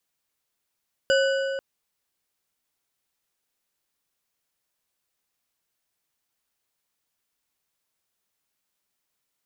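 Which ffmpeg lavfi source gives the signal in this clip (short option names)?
-f lavfi -i "aevalsrc='0.133*pow(10,-3*t/2.79)*sin(2*PI*543*t)+0.0794*pow(10,-3*t/2.058)*sin(2*PI*1497.1*t)+0.0473*pow(10,-3*t/1.682)*sin(2*PI*2934.4*t)+0.0282*pow(10,-3*t/1.446)*sin(2*PI*4850.6*t)+0.0168*pow(10,-3*t/1.283)*sin(2*PI*7243.6*t)':d=0.49:s=44100"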